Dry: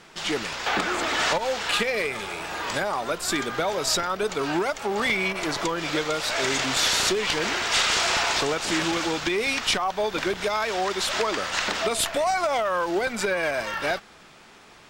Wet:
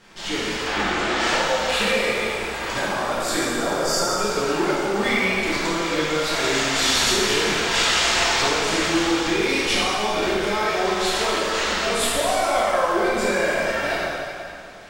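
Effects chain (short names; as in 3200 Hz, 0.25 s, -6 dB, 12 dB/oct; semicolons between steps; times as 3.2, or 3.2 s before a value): 0.64–1.2 air absorption 51 m; 3.41–4.09 spectral repair 1700–4300 Hz after; low shelf 72 Hz +9 dB; plate-style reverb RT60 2.4 s, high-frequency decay 0.9×, DRR -8.5 dB; gain -5.5 dB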